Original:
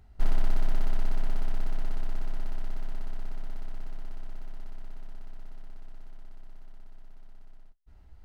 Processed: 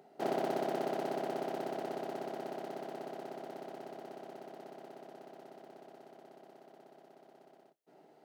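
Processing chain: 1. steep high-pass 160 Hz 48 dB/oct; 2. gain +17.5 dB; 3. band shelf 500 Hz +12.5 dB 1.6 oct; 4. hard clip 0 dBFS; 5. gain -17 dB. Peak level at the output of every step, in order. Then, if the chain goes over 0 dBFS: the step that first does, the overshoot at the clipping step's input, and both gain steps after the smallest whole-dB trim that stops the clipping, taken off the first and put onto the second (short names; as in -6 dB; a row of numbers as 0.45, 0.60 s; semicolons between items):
-28.5, -11.0, -5.5, -5.5, -22.5 dBFS; no overload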